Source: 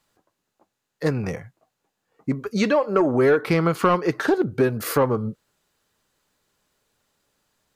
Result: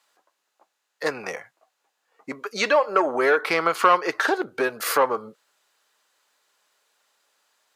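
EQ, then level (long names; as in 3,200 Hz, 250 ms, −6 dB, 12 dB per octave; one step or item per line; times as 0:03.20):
high-pass filter 680 Hz 12 dB per octave
high-shelf EQ 11,000 Hz −6.5 dB
+5.0 dB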